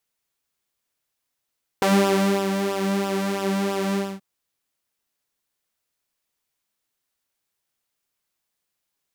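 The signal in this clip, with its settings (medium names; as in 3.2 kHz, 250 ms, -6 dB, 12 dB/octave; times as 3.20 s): synth patch with pulse-width modulation G3, sub -15.5 dB, filter highpass, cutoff 160 Hz, Q 1.6, filter envelope 2 oct, filter decay 0.10 s, filter sustain 35%, attack 2.9 ms, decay 0.64 s, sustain -8 dB, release 0.26 s, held 2.12 s, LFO 3 Hz, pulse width 28%, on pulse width 19%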